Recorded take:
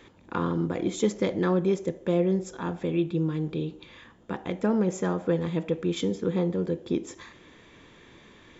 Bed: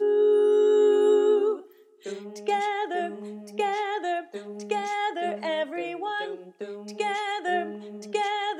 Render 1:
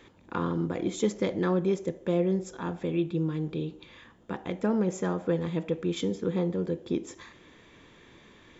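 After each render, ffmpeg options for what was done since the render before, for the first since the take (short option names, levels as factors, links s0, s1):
-af "volume=0.794"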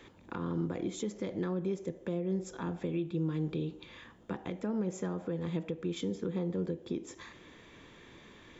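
-filter_complex "[0:a]alimiter=limit=0.0631:level=0:latency=1:release=362,acrossover=split=380[s0][s1];[s1]acompressor=threshold=0.0112:ratio=6[s2];[s0][s2]amix=inputs=2:normalize=0"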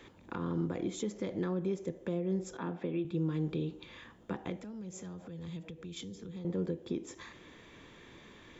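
-filter_complex "[0:a]asettb=1/sr,asplit=3[s0][s1][s2];[s0]atrim=end=2.574[s3];[s1]atrim=start=2.57:end=3.05,asetpts=PTS-STARTPTS,afade=t=in:d=0.004:c=qsin,afade=t=out:st=0.476:d=0.004:c=qsin,highpass=170,lowpass=3600[s4];[s2]atrim=start=3.046[s5];[s3][s4]acrossfade=d=0.004:c1=hsin:c2=qsin[s6];[s6][s5]acrossfade=d=0.004:c1=qsin:c2=hsin,asettb=1/sr,asplit=3[s7][s8][s9];[s7]atrim=end=4.564[s10];[s8]atrim=start=4.56:end=6.45,asetpts=PTS-STARTPTS,afade=t=in:d=0.004:c=qsin,afade=t=out:st=1.886:d=0.004:c=qsin,acrossover=split=140|3000[s11][s12][s13];[s12]acompressor=threshold=0.00447:ratio=6:attack=3.2:release=140:knee=2.83:detection=peak[s14];[s11][s14][s13]amix=inputs=3:normalize=0[s15];[s9]atrim=start=6.446[s16];[s10][s15]acrossfade=d=0.004:c1=hsin:c2=qsin[s17];[s17][s16]acrossfade=d=0.004:c1=qsin:c2=hsin"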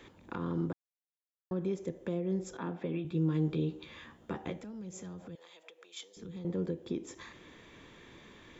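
-filter_complex "[0:a]asettb=1/sr,asplit=3[s0][s1][s2];[s0]atrim=end=2.844[s3];[s1]atrim=start=2.84:end=4.63,asetpts=PTS-STARTPTS,afade=t=in:d=0.004:c=qsin,afade=t=out:st=1.786:d=0.004:c=qsin,asplit=2[s4][s5];[s5]adelay=13,volume=0.501[s6];[s4][s6]amix=inputs=2:normalize=0,atrim=end_sample=78939[s7];[s2]atrim=start=4.626[s8];[s3][s7]acrossfade=d=0.004:c1=hsin:c2=qsin[s9];[s9][s8]acrossfade=d=0.004:c1=qsin:c2=hsin,asettb=1/sr,asplit=3[s10][s11][s12];[s10]atrim=end=5.354[s13];[s11]atrim=start=5.35:end=6.17,asetpts=PTS-STARTPTS,afade=t=in:d=0.004:c=qsin,afade=t=out:st=0.816:d=0.004:c=qsin,highpass=f=540:w=0.5412,highpass=f=540:w=1.3066[s14];[s12]atrim=start=6.166[s15];[s13][s14]acrossfade=d=0.004:c1=hsin:c2=qsin[s16];[s16][s15]acrossfade=d=0.004:c1=qsin:c2=hsin,asplit=3[s17][s18][s19];[s17]atrim=end=0.73,asetpts=PTS-STARTPTS,afade=t=out:st=0.726:d=0.004:c=hsin[s20];[s18]atrim=start=0.73:end=1.51,asetpts=PTS-STARTPTS,volume=0[s21];[s19]atrim=start=1.51,asetpts=PTS-STARTPTS,afade=t=in:d=0.004:c=hsin[s22];[s20][s21][s22]concat=n=3:v=0:a=1"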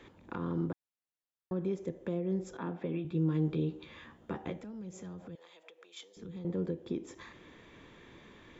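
-af "highshelf=f=4100:g=-7"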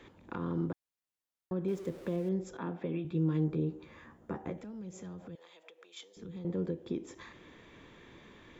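-filter_complex "[0:a]asettb=1/sr,asplit=3[s0][s1][s2];[s0]atrim=end=1.684[s3];[s1]atrim=start=1.68:end=2.29,asetpts=PTS-STARTPTS,afade=t=in:d=0.004:c=qsin,afade=t=out:st=0.606:d=0.004:c=qsin,aeval=exprs='val(0)+0.5*0.00376*sgn(val(0))':c=same[s4];[s2]atrim=start=2.286[s5];[s3][s4]acrossfade=d=0.004:c1=hsin:c2=qsin[s6];[s6][s5]acrossfade=d=0.004:c1=qsin:c2=hsin,asettb=1/sr,asplit=3[s7][s8][s9];[s7]atrim=end=3.444[s10];[s8]atrim=start=3.44:end=4.58,asetpts=PTS-STARTPTS,afade=t=in:d=0.004:c=qsin,afade=t=out:st=1.136:d=0.004:c=qsin,equalizer=f=3300:t=o:w=0.95:g=-11[s11];[s9]atrim=start=4.576[s12];[s10][s11]acrossfade=d=0.004:c1=hsin:c2=qsin[s13];[s13][s12]acrossfade=d=0.004:c1=qsin:c2=hsin"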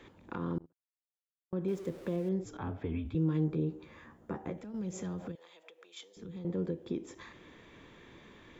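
-filter_complex "[0:a]asettb=1/sr,asplit=3[s0][s1][s2];[s0]atrim=end=0.584[s3];[s1]atrim=start=0.58:end=1.53,asetpts=PTS-STARTPTS,afade=t=in:d=0.004:c=qsin,afade=t=out:st=0.946:d=0.004:c=qsin,agate=range=0.01:threshold=0.0355:ratio=16:release=100:detection=peak[s4];[s2]atrim=start=1.526[s5];[s3][s4]acrossfade=d=0.004:c1=hsin:c2=qsin[s6];[s6][s5]acrossfade=d=0.004:c1=qsin:c2=hsin,asettb=1/sr,asplit=3[s7][s8][s9];[s7]atrim=end=2.454[s10];[s8]atrim=start=2.45:end=3.15,asetpts=PTS-STARTPTS,afade=t=in:d=0.004:c=qsin,afade=t=out:st=0.696:d=0.004:c=qsin,afreqshift=-79[s11];[s9]atrim=start=3.146[s12];[s10][s11]acrossfade=d=0.004:c1=hsin:c2=qsin[s13];[s13][s12]acrossfade=d=0.004:c1=qsin:c2=hsin,asettb=1/sr,asplit=3[s14][s15][s16];[s14]atrim=end=4.744[s17];[s15]atrim=start=4.74:end=5.32,asetpts=PTS-STARTPTS,afade=t=in:d=0.004:c=qsin,afade=t=out:st=0.576:d=0.004:c=qsin,acontrast=62[s18];[s16]atrim=start=5.316[s19];[s17][s18]acrossfade=d=0.004:c1=hsin:c2=qsin[s20];[s20][s19]acrossfade=d=0.004:c1=qsin:c2=hsin"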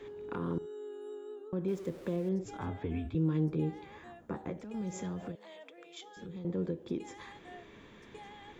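-filter_complex "[1:a]volume=0.0596[s0];[0:a][s0]amix=inputs=2:normalize=0"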